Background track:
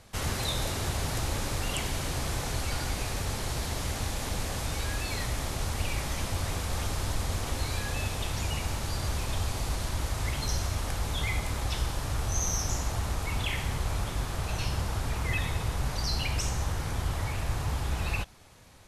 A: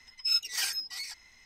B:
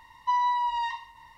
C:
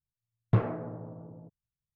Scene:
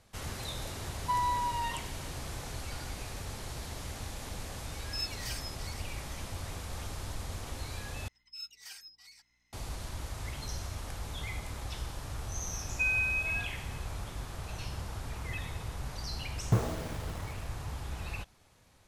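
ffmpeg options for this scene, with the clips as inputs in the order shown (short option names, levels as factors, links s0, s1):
-filter_complex "[2:a]asplit=2[s0][s1];[1:a]asplit=2[s2][s3];[0:a]volume=0.376[s4];[s3]aeval=exprs='val(0)+0.000708*(sin(2*PI*60*n/s)+sin(2*PI*2*60*n/s)/2+sin(2*PI*3*60*n/s)/3+sin(2*PI*4*60*n/s)/4+sin(2*PI*5*60*n/s)/5)':c=same[s5];[s1]lowpass=f=3000:t=q:w=0.5098,lowpass=f=3000:t=q:w=0.6013,lowpass=f=3000:t=q:w=0.9,lowpass=f=3000:t=q:w=2.563,afreqshift=-3500[s6];[3:a]acrusher=bits=6:mix=0:aa=0.000001[s7];[s4]asplit=2[s8][s9];[s8]atrim=end=8.084[s10];[s5]atrim=end=1.45,asetpts=PTS-STARTPTS,volume=0.141[s11];[s9]atrim=start=9.526[s12];[s0]atrim=end=1.37,asetpts=PTS-STARTPTS,volume=0.531,afade=t=in:d=0.004:c=hsin,afade=t=out:st=1.366:d=0.004:c=hsin,adelay=810[s13];[s2]atrim=end=1.45,asetpts=PTS-STARTPTS,volume=0.316,afade=t=in:d=0.004:c=hsin,afade=t=out:st=1.446:d=0.004:c=hsin,adelay=4680[s14];[s6]atrim=end=1.37,asetpts=PTS-STARTPTS,volume=0.562,afade=t=in:d=0.004:c=hsin,afade=t=out:st=1.366:d=0.004:c=hsin,adelay=552132S[s15];[s7]atrim=end=1.95,asetpts=PTS-STARTPTS,volume=0.75,afade=t=in:d=0.004:c=hsin,afade=t=out:st=1.946:d=0.004:c=hsin,adelay=15990[s16];[s10][s11]acrossfade=d=0.004:c1=hsin:c2=hsin[s17];[s17][s12]acrossfade=d=0.004:c1=hsin:c2=hsin[s18];[s18][s13][s14][s15][s16]amix=inputs=5:normalize=0"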